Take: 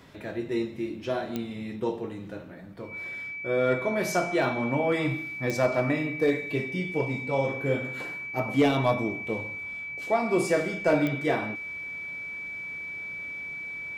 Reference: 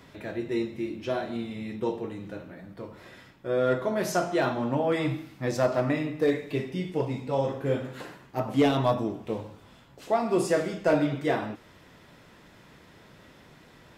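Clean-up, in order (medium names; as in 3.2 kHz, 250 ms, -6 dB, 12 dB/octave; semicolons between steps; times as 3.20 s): de-click; band-stop 2.3 kHz, Q 30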